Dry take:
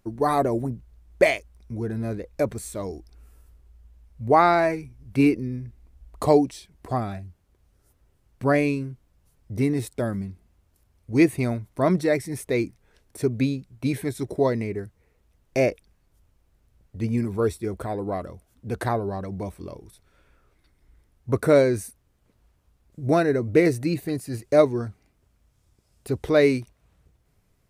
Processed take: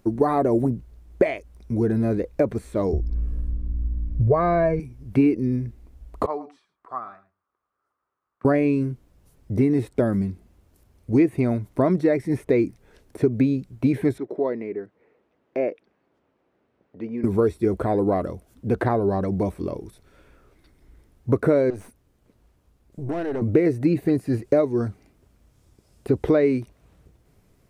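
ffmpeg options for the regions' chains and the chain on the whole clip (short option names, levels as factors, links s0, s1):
-filter_complex "[0:a]asettb=1/sr,asplit=3[s0][s1][s2];[s0]atrim=end=2.934[s3];[s1]atrim=start=2.93:end=4.8,asetpts=PTS-STARTPTS,afade=t=in:d=0.004:c=qsin,afade=t=out:st=1.866:d=0.004:c=qsin,aemphasis=mode=reproduction:type=riaa,aecho=1:1:1.8:0.92,atrim=end_sample=82467,aeval=exprs='val(0)+0.00562*(sin(2*PI*60*n/s)+sin(2*PI*2*60*n/s)/2+sin(2*PI*3*60*n/s)/3+sin(2*PI*4*60*n/s)/4+sin(2*PI*5*60*n/s)/5)':c=same[s4];[s2]atrim=start=4.796[s5];[s3][s4]acrossfade=d=0.004:c1=hsin:c2=qsin[s6];[s6][s5]acrossfade=d=0.004:c1=qsin:c2=hsin,asettb=1/sr,asplit=3[s7][s8][s9];[s7]atrim=end=6.264[s10];[s8]atrim=start=6.26:end=8.45,asetpts=PTS-STARTPTS,afade=t=in:d=0.004:c=qsin,afade=t=out:st=2.186:d=0.004:c=qsin,bandpass=f=1200:t=q:w=6.2,aecho=1:1:108:0.141,atrim=end_sample=96579[s11];[s9]atrim=start=8.446[s12];[s10][s11]acrossfade=d=0.004:c1=hsin:c2=qsin[s13];[s13][s12]acrossfade=d=0.004:c1=qsin:c2=hsin,asettb=1/sr,asplit=3[s14][s15][s16];[s14]atrim=end=14.184[s17];[s15]atrim=start=14.18:end=17.24,asetpts=PTS-STARTPTS,afade=t=in:d=0.004:c=qsin,afade=t=out:st=3.056:d=0.004:c=qsin,acompressor=threshold=0.00501:ratio=1.5:attack=3.2:release=140:knee=1:detection=peak,highpass=290,lowpass=2300[s18];[s16]atrim=start=17.236[s19];[s17][s18]acrossfade=d=0.004:c1=hsin:c2=qsin[s20];[s20][s19]acrossfade=d=0.004:c1=qsin:c2=hsin,asettb=1/sr,asplit=3[s21][s22][s23];[s21]atrim=end=21.704[s24];[s22]atrim=start=21.7:end=23.42,asetpts=PTS-STARTPTS,afade=t=in:d=0.004:c=qsin,afade=t=out:st=1.716:d=0.004:c=qsin,acompressor=threshold=0.0282:ratio=2.5:attack=3.2:release=140:knee=1:detection=peak,aeval=exprs='(tanh(39.8*val(0)+0.65)-tanh(0.65))/39.8':c=same[s25];[s23]atrim=start=23.416[s26];[s24][s25]acrossfade=d=0.004:c1=hsin:c2=qsin[s27];[s27][s26]acrossfade=d=0.004:c1=qsin:c2=hsin,acompressor=threshold=0.0562:ratio=6,equalizer=f=320:w=0.64:g=6,acrossover=split=2800[s28][s29];[s29]acompressor=threshold=0.00141:ratio=4:attack=1:release=60[s30];[s28][s30]amix=inputs=2:normalize=0,volume=1.68"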